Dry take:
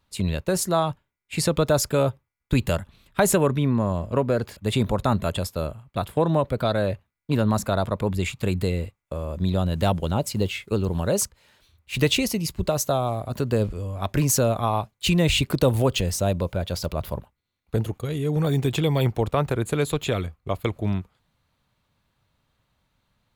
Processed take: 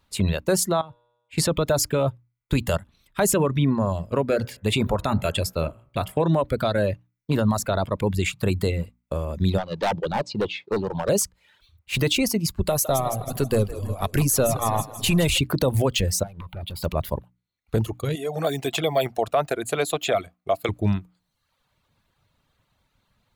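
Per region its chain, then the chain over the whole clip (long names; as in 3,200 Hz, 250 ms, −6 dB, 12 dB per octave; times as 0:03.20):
0:00.81–0:01.38: high-shelf EQ 4,200 Hz −10 dB + tuned comb filter 120 Hz, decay 1.3 s, mix 70%
0:04.29–0:06.28: parametric band 2,500 Hz +5.5 dB 0.37 octaves + hum removal 63.91 Hz, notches 32
0:09.58–0:11.09: loudspeaker in its box 170–4,600 Hz, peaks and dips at 250 Hz −5 dB, 500 Hz +4 dB, 870 Hz +7 dB, 1,400 Hz −6 dB, 2,100 Hz −7 dB, 3,000 Hz −5 dB + hard clipping −23 dBFS
0:12.64–0:15.38: gain on one half-wave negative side −3 dB + parametric band 11,000 Hz +12 dB 0.65 octaves + echo with a time of its own for lows and highs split 320 Hz, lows 304 ms, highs 160 ms, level −10 dB
0:16.23–0:16.83: phaser with its sweep stopped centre 1,700 Hz, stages 6 + downward compressor 10 to 1, threshold −28 dBFS + gain into a clipping stage and back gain 32 dB
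0:18.15–0:20.69: high-pass filter 530 Hz 6 dB per octave + parametric band 670 Hz +13.5 dB 0.27 octaves + notch filter 950 Hz, Q 13
whole clip: mains-hum notches 60/120/180/240/300 Hz; reverb reduction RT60 0.78 s; brickwall limiter −15.5 dBFS; level +4 dB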